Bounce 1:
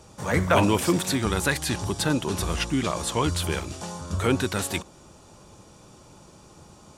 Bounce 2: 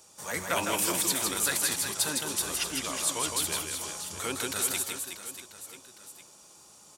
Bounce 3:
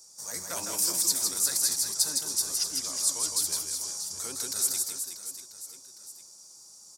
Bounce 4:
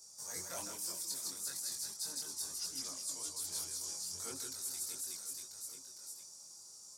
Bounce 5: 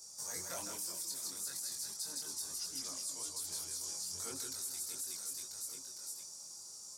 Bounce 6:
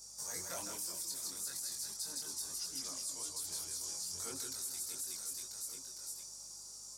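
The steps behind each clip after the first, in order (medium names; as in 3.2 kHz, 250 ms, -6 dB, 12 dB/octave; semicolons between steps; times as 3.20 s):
RIAA curve recording; reverse bouncing-ball echo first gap 160 ms, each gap 1.3×, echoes 5; trim -9 dB
resonant high shelf 3.9 kHz +9.5 dB, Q 3; trim -9 dB
reverse; compression 5:1, threshold -36 dBFS, peak gain reduction 14.5 dB; reverse; chorus voices 2, 0.7 Hz, delay 23 ms, depth 1.2 ms
compression, threshold -42 dBFS, peak gain reduction 6.5 dB; trim +4 dB
hum 50 Hz, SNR 31 dB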